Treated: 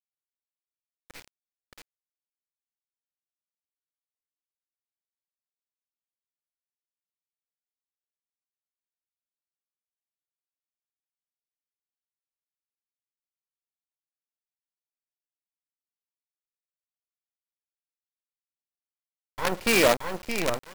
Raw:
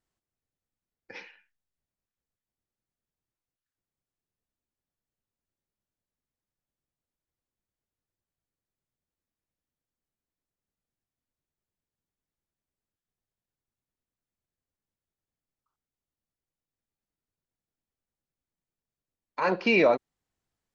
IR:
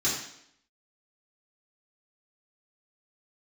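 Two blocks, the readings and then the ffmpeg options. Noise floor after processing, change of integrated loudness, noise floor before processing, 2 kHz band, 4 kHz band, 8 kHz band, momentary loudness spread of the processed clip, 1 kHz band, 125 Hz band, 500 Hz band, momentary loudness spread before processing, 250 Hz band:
under -85 dBFS, 0.0 dB, under -85 dBFS, +2.0 dB, +8.5 dB, n/a, 11 LU, +1.0 dB, +3.5 dB, 0.0 dB, 10 LU, -0.5 dB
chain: -af "aecho=1:1:622|1244|1866:0.631|0.107|0.0182,acrusher=bits=4:dc=4:mix=0:aa=0.000001"

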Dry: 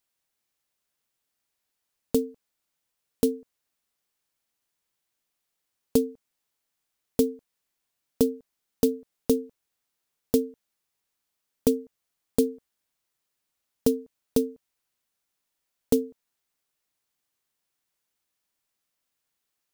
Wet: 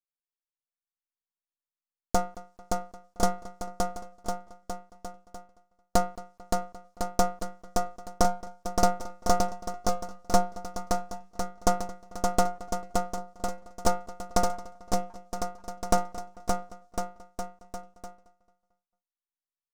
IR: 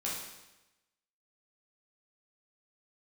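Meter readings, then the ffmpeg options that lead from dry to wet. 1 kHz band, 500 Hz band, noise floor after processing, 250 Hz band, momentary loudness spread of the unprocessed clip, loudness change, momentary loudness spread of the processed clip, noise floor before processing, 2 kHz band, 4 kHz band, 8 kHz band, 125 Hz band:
+24.5 dB, -2.5 dB, under -85 dBFS, -6.0 dB, 10 LU, -3.5 dB, 15 LU, -82 dBFS, n/a, +5.5 dB, +5.5 dB, +5.0 dB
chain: -filter_complex "[0:a]firequalizer=gain_entry='entry(190,0);entry(1200,-16);entry(5700,9);entry(16000,-18)':delay=0.05:min_phase=1,asplit=2[a][b];[b]adelay=222,lowpass=f=4.7k:p=1,volume=-19dB,asplit=2[c][d];[d]adelay=222,lowpass=f=4.7k:p=1,volume=0.45,asplit=2[e][f];[f]adelay=222,lowpass=f=4.7k:p=1,volume=0.45,asplit=2[g][h];[h]adelay=222,lowpass=f=4.7k:p=1,volume=0.45[i];[c][e][g][i]amix=inputs=4:normalize=0[j];[a][j]amix=inputs=2:normalize=0,aeval=exprs='abs(val(0))':c=same,equalizer=f=1.1k:t=o:w=1.2:g=13.5,agate=range=-33dB:threshold=-57dB:ratio=3:detection=peak,asplit=2[k][l];[l]aecho=0:1:570|1054|1466|1816|2114:0.631|0.398|0.251|0.158|0.1[m];[k][m]amix=inputs=2:normalize=0"

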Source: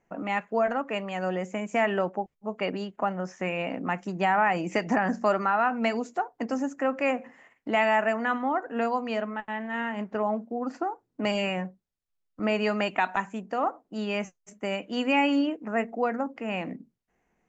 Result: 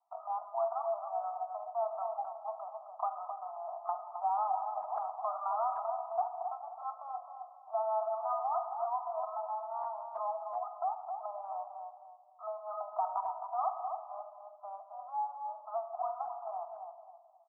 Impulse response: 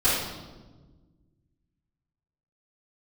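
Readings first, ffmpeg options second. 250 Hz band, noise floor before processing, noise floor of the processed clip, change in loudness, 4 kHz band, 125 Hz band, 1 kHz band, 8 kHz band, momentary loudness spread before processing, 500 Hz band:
under -40 dB, -78 dBFS, -56 dBFS, -9.0 dB, under -40 dB, under -40 dB, -4.5 dB, n/a, 9 LU, -10.0 dB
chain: -filter_complex "[0:a]asplit=2[a][b];[1:a]atrim=start_sample=2205[c];[b][c]afir=irnorm=-1:irlink=0,volume=-22dB[d];[a][d]amix=inputs=2:normalize=0,acompressor=threshold=-25dB:ratio=4,asuperpass=centerf=910:order=20:qfactor=1.4,asplit=2[e][f];[f]adelay=264,lowpass=f=890:p=1,volume=-4dB,asplit=2[g][h];[h]adelay=264,lowpass=f=890:p=1,volume=0.41,asplit=2[i][j];[j]adelay=264,lowpass=f=890:p=1,volume=0.41,asplit=2[k][l];[l]adelay=264,lowpass=f=890:p=1,volume=0.41,asplit=2[m][n];[n]adelay=264,lowpass=f=890:p=1,volume=0.41[o];[e][g][i][k][m][o]amix=inputs=6:normalize=0,volume=-2.5dB" -ar 48000 -c:a aac -b:a 32k

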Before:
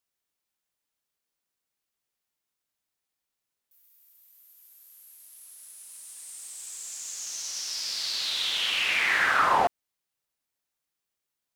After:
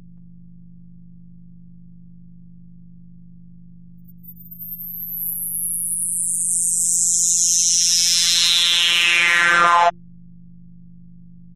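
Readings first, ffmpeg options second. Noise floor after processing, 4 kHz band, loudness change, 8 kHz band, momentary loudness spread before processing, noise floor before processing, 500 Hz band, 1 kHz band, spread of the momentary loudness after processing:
-42 dBFS, +12.5 dB, +11.0 dB, +20.5 dB, 21 LU, under -85 dBFS, +8.0 dB, +8.0 dB, 12 LU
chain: -filter_complex "[0:a]afftfilt=real='re*gte(hypot(re,im),0.00447)':imag='im*gte(hypot(re,im),0.00447)':win_size=1024:overlap=0.75,aemphasis=mode=production:type=50fm,bandreject=f=50:t=h:w=6,bandreject=f=100:t=h:w=6,bandreject=f=150:t=h:w=6,bandreject=f=200:t=h:w=6,bandreject=f=250:t=h:w=6,bandreject=f=300:t=h:w=6,bandreject=f=350:t=h:w=6,afftdn=nr=35:nf=-45,adynamicequalizer=threshold=0.00794:dfrequency=9800:dqfactor=0.95:tfrequency=9800:tqfactor=0.95:attack=5:release=100:ratio=0.375:range=2:mode=cutabove:tftype=bell,acompressor=threshold=-27dB:ratio=2.5,aeval=exprs='val(0)+0.00178*(sin(2*PI*50*n/s)+sin(2*PI*2*50*n/s)/2+sin(2*PI*3*50*n/s)/3+sin(2*PI*4*50*n/s)/4+sin(2*PI*5*50*n/s)/5)':c=same,afftfilt=real='hypot(re,im)*cos(PI*b)':imag='0':win_size=1024:overlap=0.75,asuperstop=centerf=4600:order=4:qfactor=4.5,acrossover=split=550[a][b];[b]adelay=220[c];[a][c]amix=inputs=2:normalize=0,alimiter=level_in=21.5dB:limit=-1dB:release=50:level=0:latency=1,volume=-1dB"

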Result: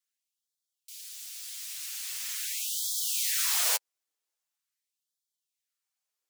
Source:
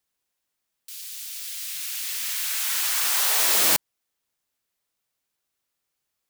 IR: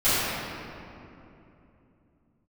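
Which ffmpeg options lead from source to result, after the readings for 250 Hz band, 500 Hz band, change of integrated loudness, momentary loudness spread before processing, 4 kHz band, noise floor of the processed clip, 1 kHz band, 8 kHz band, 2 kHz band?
under -40 dB, -13.0 dB, -7.0 dB, 16 LU, -6.5 dB, under -85 dBFS, -11.0 dB, -5.0 dB, -9.5 dB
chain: -af "flanger=delay=6.2:depth=3.8:regen=-8:speed=1.7:shape=triangular,equalizer=f=6.8k:w=0.9:g=4,afftfilt=real='re*gte(b*sr/1024,260*pow(3200/260,0.5+0.5*sin(2*PI*0.43*pts/sr)))':imag='im*gte(b*sr/1024,260*pow(3200/260,0.5+0.5*sin(2*PI*0.43*pts/sr)))':win_size=1024:overlap=0.75,volume=-5dB"

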